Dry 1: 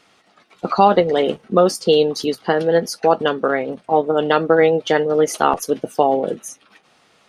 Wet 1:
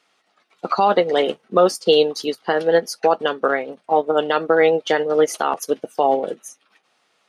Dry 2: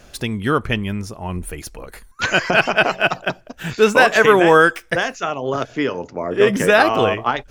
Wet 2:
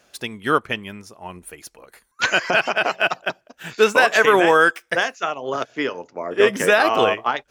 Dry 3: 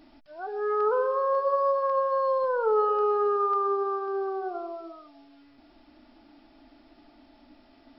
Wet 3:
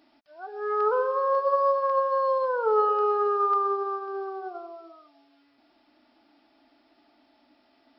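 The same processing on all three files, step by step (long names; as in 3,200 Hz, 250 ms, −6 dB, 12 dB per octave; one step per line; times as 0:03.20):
high-pass filter 440 Hz 6 dB per octave
brickwall limiter −8 dBFS
expander for the loud parts 1.5 to 1, over −38 dBFS
level +4 dB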